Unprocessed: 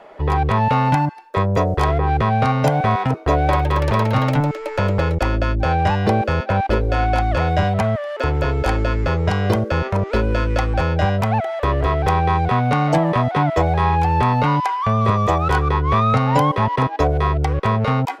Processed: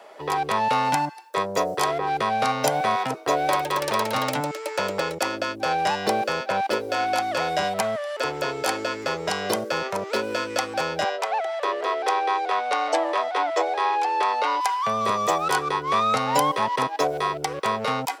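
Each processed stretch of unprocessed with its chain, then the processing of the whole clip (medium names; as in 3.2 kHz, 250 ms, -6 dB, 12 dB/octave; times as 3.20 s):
11.04–14.61 s: steep high-pass 330 Hz 48 dB/octave + distance through air 66 m
whole clip: high-pass 130 Hz 24 dB/octave; tone controls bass -14 dB, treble +14 dB; band-stop 6.6 kHz, Q 27; trim -3 dB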